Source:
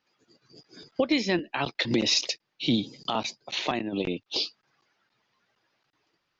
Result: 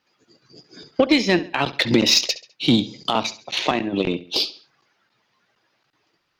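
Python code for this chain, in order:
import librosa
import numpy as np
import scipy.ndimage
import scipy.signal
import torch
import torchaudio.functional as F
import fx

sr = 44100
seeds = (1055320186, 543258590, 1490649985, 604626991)

y = fx.echo_feedback(x, sr, ms=68, feedback_pct=37, wet_db=-15.0)
y = fx.cheby_harmonics(y, sr, harmonics=(4, 6, 7, 8), levels_db=(-32, -25, -29, -29), full_scale_db=-11.0)
y = y * 10.0 ** (8.0 / 20.0)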